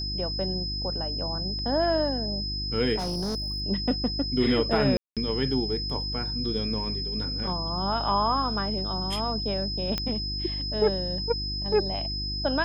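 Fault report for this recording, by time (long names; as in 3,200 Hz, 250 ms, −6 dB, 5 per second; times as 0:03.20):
mains hum 50 Hz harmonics 7 −34 dBFS
whistle 5,100 Hz −31 dBFS
0:02.98–0:03.62: clipping −26 dBFS
0:04.97–0:05.17: drop-out 197 ms
0:09.98: click −13 dBFS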